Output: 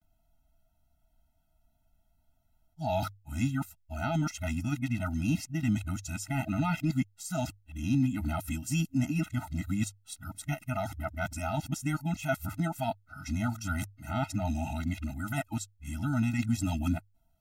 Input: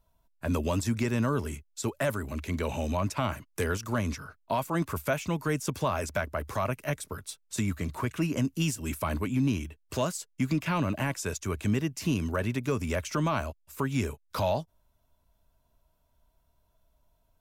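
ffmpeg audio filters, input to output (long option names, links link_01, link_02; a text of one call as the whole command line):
ffmpeg -i in.wav -af "areverse,bandreject=frequency=50:width_type=h:width=6,bandreject=frequency=100:width_type=h:width=6,afftfilt=real='re*eq(mod(floor(b*sr/1024/310),2),0)':imag='im*eq(mod(floor(b*sr/1024/310),2),0)':win_size=1024:overlap=0.75" out.wav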